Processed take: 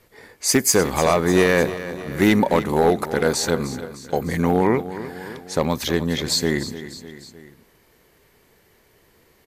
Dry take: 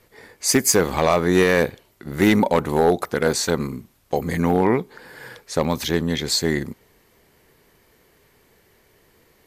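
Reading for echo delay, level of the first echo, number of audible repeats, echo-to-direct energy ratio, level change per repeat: 303 ms, −13.5 dB, 3, −12.0 dB, −5.0 dB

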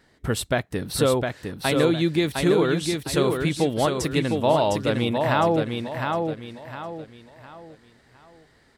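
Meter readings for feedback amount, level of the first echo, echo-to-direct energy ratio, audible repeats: 35%, −4.5 dB, −4.0 dB, 4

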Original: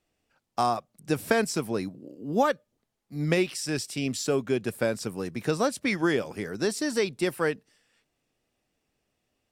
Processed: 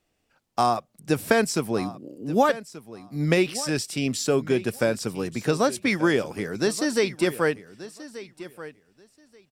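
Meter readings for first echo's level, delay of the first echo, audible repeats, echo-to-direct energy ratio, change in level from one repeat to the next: −16.0 dB, 1,182 ms, 2, −16.0 dB, −16.0 dB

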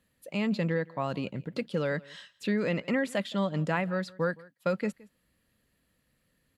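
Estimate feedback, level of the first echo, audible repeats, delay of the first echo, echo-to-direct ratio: repeats not evenly spaced, −23.0 dB, 1, 168 ms, −23.0 dB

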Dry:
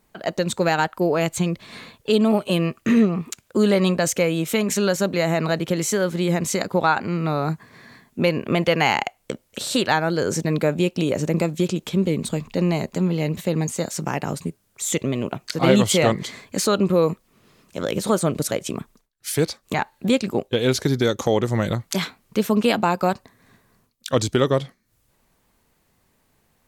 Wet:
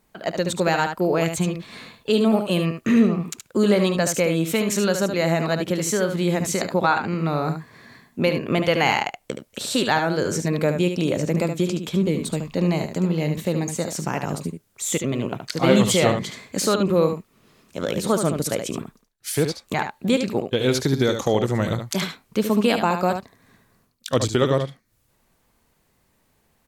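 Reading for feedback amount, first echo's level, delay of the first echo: repeats not evenly spaced, −7.5 dB, 73 ms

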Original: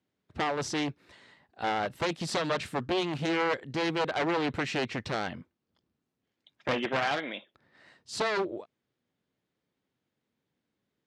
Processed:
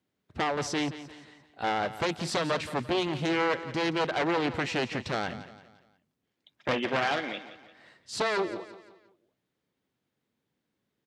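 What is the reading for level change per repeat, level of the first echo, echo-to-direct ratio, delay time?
−7.5 dB, −14.0 dB, −13.0 dB, 173 ms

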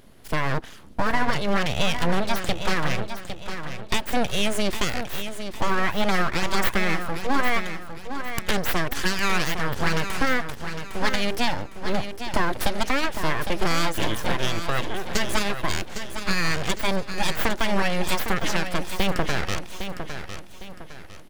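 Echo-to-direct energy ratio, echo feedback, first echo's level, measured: −8.5 dB, 37%, −9.0 dB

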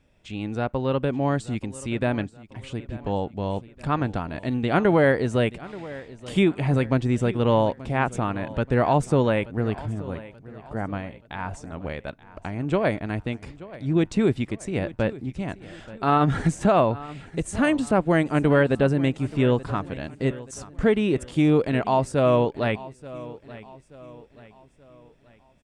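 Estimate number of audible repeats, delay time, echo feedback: 3, 880 ms, 43%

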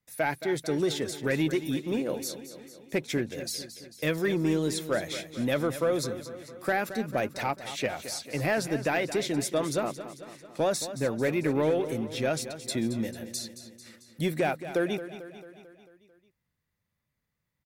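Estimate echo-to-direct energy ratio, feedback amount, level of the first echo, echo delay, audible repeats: −10.5 dB, 58%, −12.5 dB, 222 ms, 5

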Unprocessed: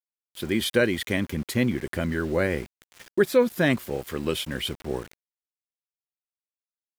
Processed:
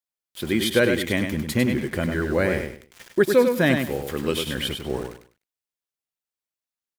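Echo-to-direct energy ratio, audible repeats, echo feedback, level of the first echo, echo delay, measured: −5.5 dB, 3, 24%, −6.0 dB, 100 ms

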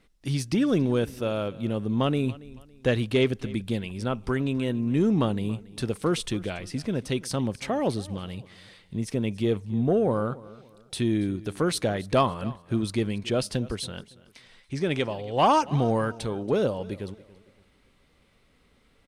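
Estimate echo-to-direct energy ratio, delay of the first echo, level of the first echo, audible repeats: −19.5 dB, 280 ms, −20.0 dB, 2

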